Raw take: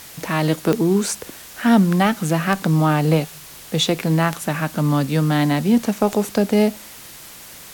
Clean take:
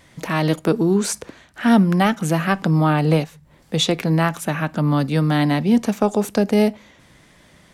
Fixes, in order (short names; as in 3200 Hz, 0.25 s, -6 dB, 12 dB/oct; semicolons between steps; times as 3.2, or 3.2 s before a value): de-click; noise print and reduce 11 dB